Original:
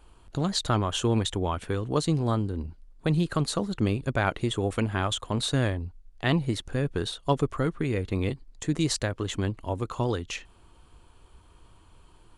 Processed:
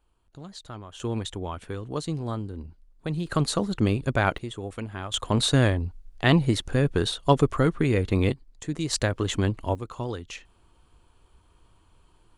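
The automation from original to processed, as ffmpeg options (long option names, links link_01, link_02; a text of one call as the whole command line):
ffmpeg -i in.wav -af "asetnsamples=nb_out_samples=441:pad=0,asendcmd='1 volume volume -5dB;3.27 volume volume 2.5dB;4.38 volume volume -7.5dB;5.14 volume volume 5dB;8.32 volume volume -3.5dB;8.93 volume volume 4dB;9.75 volume volume -4.5dB',volume=-15dB" out.wav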